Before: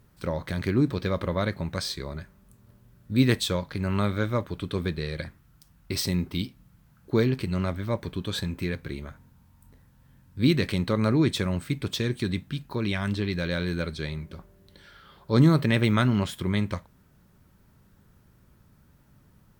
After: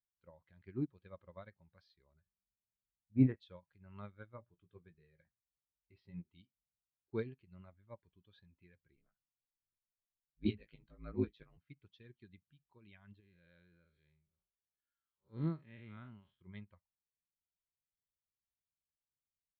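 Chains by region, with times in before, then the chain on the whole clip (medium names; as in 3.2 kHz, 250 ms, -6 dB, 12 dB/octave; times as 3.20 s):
2.21–3.36 s: low-pass 1.4 kHz + doubling 46 ms -6.5 dB
4.35–6.30 s: distance through air 200 m + doubling 18 ms -8 dB + de-hum 119.3 Hz, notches 6
8.95–11.58 s: ring modulator 55 Hz + doubling 19 ms -2.5 dB
13.20–16.41 s: spectral blur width 132 ms + bass shelf 360 Hz -2.5 dB
whole clip: expander on every frequency bin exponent 1.5; low-pass 3.7 kHz 24 dB/octave; upward expansion 2.5:1, over -33 dBFS; trim -5.5 dB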